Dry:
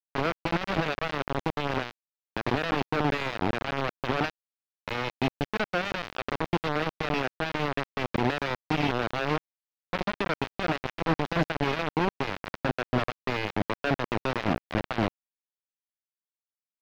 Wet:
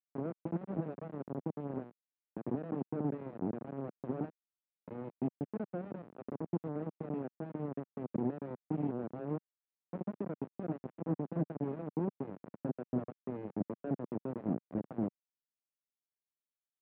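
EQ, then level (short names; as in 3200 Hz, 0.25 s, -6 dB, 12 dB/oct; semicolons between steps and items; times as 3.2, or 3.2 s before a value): ladder band-pass 250 Hz, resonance 20%; air absorption 80 m; +5.5 dB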